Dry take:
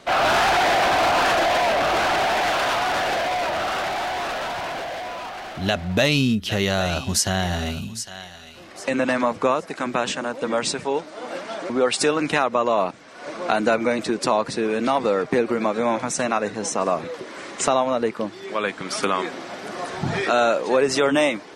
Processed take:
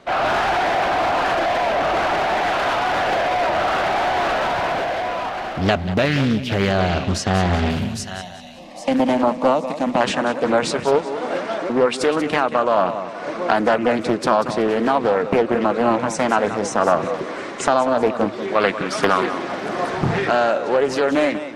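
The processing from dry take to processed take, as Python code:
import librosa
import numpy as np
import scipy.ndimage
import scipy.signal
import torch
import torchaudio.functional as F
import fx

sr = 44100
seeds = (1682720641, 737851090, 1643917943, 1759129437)

y = fx.air_absorb(x, sr, metres=60.0, at=(6.72, 7.7))
y = fx.fixed_phaser(y, sr, hz=390.0, stages=6, at=(8.21, 10.01))
y = fx.echo_feedback(y, sr, ms=188, feedback_pct=35, wet_db=-12)
y = fx.rider(y, sr, range_db=4, speed_s=0.5)
y = fx.high_shelf(y, sr, hz=3400.0, db=-10.0)
y = fx.doppler_dist(y, sr, depth_ms=0.71)
y = y * librosa.db_to_amplitude(4.0)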